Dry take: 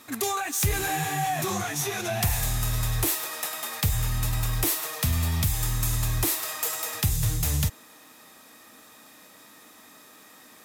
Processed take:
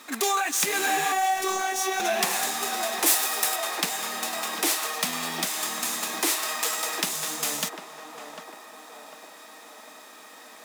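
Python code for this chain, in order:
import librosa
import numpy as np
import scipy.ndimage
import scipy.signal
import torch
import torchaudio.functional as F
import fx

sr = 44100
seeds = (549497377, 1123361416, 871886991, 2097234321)

y = scipy.ndimage.median_filter(x, 3, mode='constant')
y = fx.brickwall_highpass(y, sr, low_hz=170.0)
y = fx.low_shelf(y, sr, hz=260.0, db=-11.5)
y = fx.echo_banded(y, sr, ms=749, feedback_pct=66, hz=680.0, wet_db=-6.0)
y = fx.robotise(y, sr, hz=379.0, at=(1.12, 2.0))
y = fx.high_shelf(y, sr, hz=6900.0, db=9.0, at=(3.06, 3.56))
y = y * librosa.db_to_amplitude(5.0)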